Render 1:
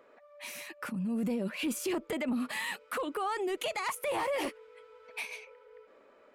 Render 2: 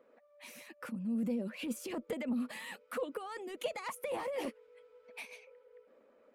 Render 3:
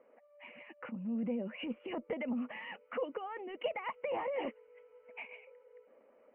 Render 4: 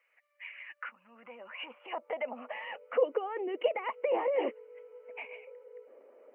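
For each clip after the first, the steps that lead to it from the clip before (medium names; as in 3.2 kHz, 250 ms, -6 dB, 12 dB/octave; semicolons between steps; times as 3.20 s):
small resonant body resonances 230/500 Hz, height 13 dB, ringing for 45 ms; harmonic-percussive split harmonic -7 dB; trim -7 dB
rippled Chebyshev low-pass 3 kHz, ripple 6 dB; trim +3.5 dB
high-pass sweep 2.3 kHz -> 380 Hz, 0.03–3.39 s; trim +2.5 dB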